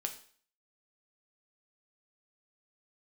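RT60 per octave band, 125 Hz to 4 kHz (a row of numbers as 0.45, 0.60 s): 0.45, 0.50, 0.50, 0.50, 0.50, 0.50 s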